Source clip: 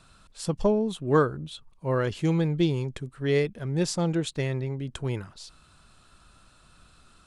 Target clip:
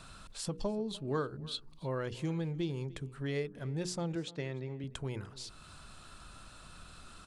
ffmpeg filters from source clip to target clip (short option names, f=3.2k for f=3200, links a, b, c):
-filter_complex "[0:a]bandreject=f=60:t=h:w=6,bandreject=f=120:t=h:w=6,bandreject=f=180:t=h:w=6,bandreject=f=240:t=h:w=6,bandreject=f=300:t=h:w=6,bandreject=f=360:t=h:w=6,bandreject=f=420:t=h:w=6,bandreject=f=480:t=h:w=6,acompressor=threshold=-51dB:ratio=2,asettb=1/sr,asplit=3[a][b][c];[a]atrim=end=0.604[d];[b]atrim=start=0.6:end=1.87,asetpts=PTS-STARTPTS,afade=t=in:d=0.004:c=qsin,afade=t=out:st=1.266:d=0.004:c=qsin,equalizer=f=4.4k:w=2.7:g=10.5[e];[c]atrim=start=1.866[f];[d][e]acrossfade=d=0.004:c1=hsin:c2=qsin[g];[g][f]acrossfade=d=0.004:c1=qsin:c2=hsin,asettb=1/sr,asplit=3[h][i][j];[h]atrim=end=4.154[k];[i]atrim=start=4.15:end=4.84,asetpts=PTS-STARTPTS,afade=t=in:d=0.004:c=qsin,afade=t=out:st=0.686:d=0.004:c=qsin,highpass=130,lowpass=5.8k[l];[j]atrim=start=4.836[m];[k][l]acrossfade=d=0.004:c1=hsin:c2=qsin[n];[n][m]acrossfade=d=0.004:c1=qsin:c2=hsin,asplit=2[o][p];[p]adelay=297.4,volume=-20dB,highshelf=f=4k:g=-6.69[q];[o][q]amix=inputs=2:normalize=0,volume=5dB"